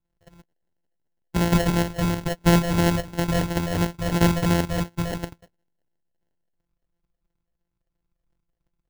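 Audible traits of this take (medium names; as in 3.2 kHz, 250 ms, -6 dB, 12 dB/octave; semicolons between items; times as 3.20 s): a buzz of ramps at a fixed pitch in blocks of 256 samples; phasing stages 8, 2.9 Hz, lowest notch 250–3200 Hz; aliases and images of a low sample rate 1.2 kHz, jitter 0%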